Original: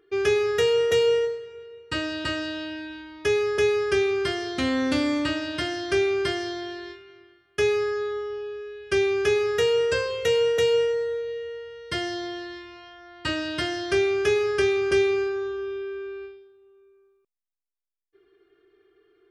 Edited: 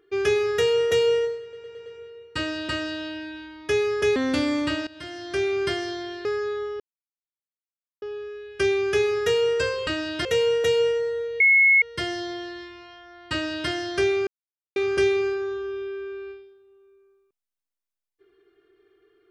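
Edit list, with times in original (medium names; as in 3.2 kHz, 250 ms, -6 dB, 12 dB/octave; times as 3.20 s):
1.42 s: stutter 0.11 s, 5 plays
3.72–4.74 s: delete
5.45–6.21 s: fade in, from -18 dB
6.83–7.79 s: delete
8.34 s: insert silence 1.22 s
11.34–11.76 s: bleep 2.18 kHz -13 dBFS
13.26–13.64 s: copy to 10.19 s
14.21–14.70 s: mute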